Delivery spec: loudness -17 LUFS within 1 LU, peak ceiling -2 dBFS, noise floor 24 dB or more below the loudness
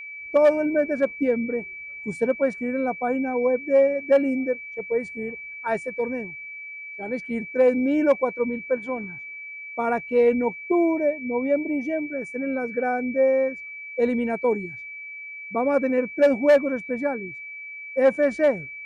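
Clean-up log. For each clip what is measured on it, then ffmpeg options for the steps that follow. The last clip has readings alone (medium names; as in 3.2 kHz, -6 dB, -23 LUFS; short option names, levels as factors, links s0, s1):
steady tone 2.3 kHz; tone level -35 dBFS; loudness -23.5 LUFS; peak level -10.0 dBFS; loudness target -17.0 LUFS
-> -af "bandreject=f=2300:w=30"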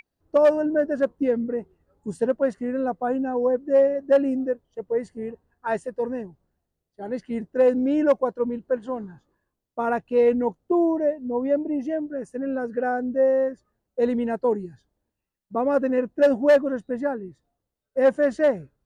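steady tone not found; loudness -23.5 LUFS; peak level -10.0 dBFS; loudness target -17.0 LUFS
-> -af "volume=2.11"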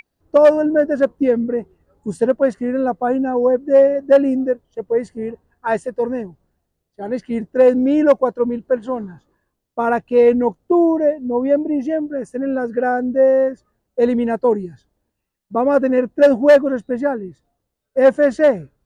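loudness -17.0 LUFS; peak level -3.5 dBFS; noise floor -76 dBFS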